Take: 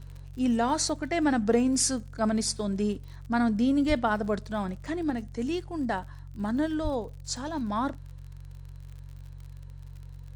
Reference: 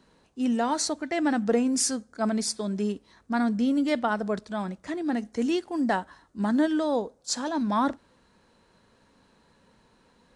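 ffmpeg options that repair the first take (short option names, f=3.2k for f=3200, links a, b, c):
-filter_complex "[0:a]adeclick=t=4,bandreject=f=46.1:t=h:w=4,bandreject=f=92.2:t=h:w=4,bandreject=f=138.3:t=h:w=4,asplit=3[a][b][c];[a]afade=t=out:st=3.88:d=0.02[d];[b]highpass=f=140:w=0.5412,highpass=f=140:w=1.3066,afade=t=in:st=3.88:d=0.02,afade=t=out:st=4:d=0.02[e];[c]afade=t=in:st=4:d=0.02[f];[d][e][f]amix=inputs=3:normalize=0,asplit=3[g][h][i];[g]afade=t=out:st=6.83:d=0.02[j];[h]highpass=f=140:w=0.5412,highpass=f=140:w=1.3066,afade=t=in:st=6.83:d=0.02,afade=t=out:st=6.95:d=0.02[k];[i]afade=t=in:st=6.95:d=0.02[l];[j][k][l]amix=inputs=3:normalize=0,asetnsamples=n=441:p=0,asendcmd='5.1 volume volume 4.5dB',volume=0dB"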